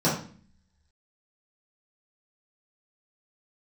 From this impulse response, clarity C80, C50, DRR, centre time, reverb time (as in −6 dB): 10.0 dB, 5.0 dB, −10.0 dB, 35 ms, 0.45 s